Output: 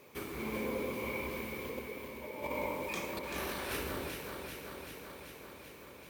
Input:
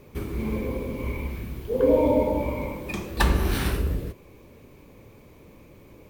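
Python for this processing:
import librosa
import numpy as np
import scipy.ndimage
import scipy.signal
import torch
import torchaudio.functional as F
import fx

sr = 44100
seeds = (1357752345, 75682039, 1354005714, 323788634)

p1 = fx.highpass(x, sr, hz=820.0, slope=6)
p2 = fx.over_compress(p1, sr, threshold_db=-36.0, ratio=-0.5)
p3 = p2 + fx.echo_alternate(p2, sr, ms=193, hz=1700.0, feedback_pct=85, wet_db=-4, dry=0)
y = F.gain(torch.from_numpy(p3), -4.5).numpy()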